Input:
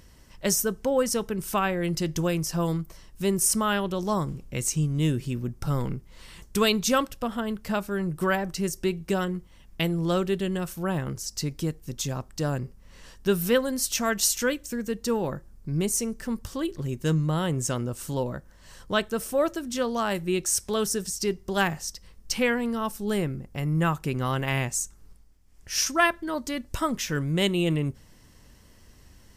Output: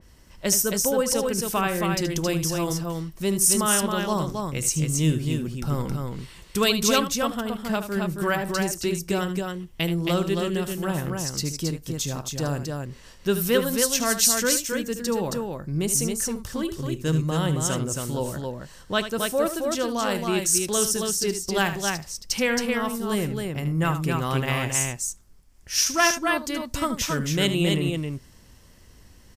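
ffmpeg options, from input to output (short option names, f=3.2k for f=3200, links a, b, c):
-filter_complex "[0:a]asplit=2[a][b];[b]aecho=0:1:75.8|271.1:0.282|0.631[c];[a][c]amix=inputs=2:normalize=0,adynamicequalizer=threshold=0.0126:dfrequency=2700:dqfactor=0.7:tfrequency=2700:tqfactor=0.7:attack=5:release=100:ratio=0.375:range=2:mode=boostabove:tftype=highshelf"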